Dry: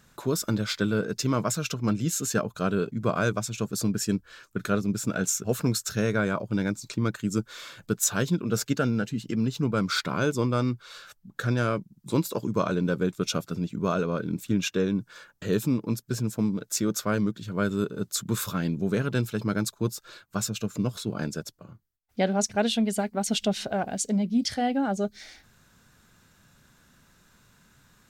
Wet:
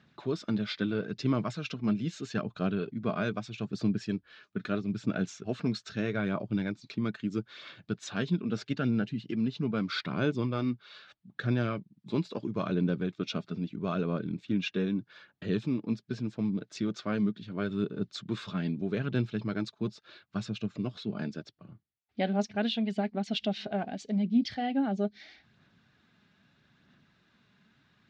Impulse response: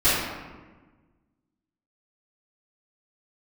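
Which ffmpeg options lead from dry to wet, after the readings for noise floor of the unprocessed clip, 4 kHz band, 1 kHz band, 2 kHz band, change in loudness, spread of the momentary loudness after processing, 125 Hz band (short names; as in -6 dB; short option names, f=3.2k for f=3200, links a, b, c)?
-63 dBFS, -6.0 dB, -7.0 dB, -6.0 dB, -5.0 dB, 8 LU, -5.0 dB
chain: -af "aphaser=in_gain=1:out_gain=1:delay=4.9:decay=0.3:speed=0.78:type=sinusoidal,asoftclip=type=hard:threshold=-11dB,highpass=120,equalizer=f=500:t=q:w=4:g=-7,equalizer=f=980:t=q:w=4:g=-6,equalizer=f=1.4k:t=q:w=4:g=-5,lowpass=f=4.1k:w=0.5412,lowpass=f=4.1k:w=1.3066,volume=-3.5dB"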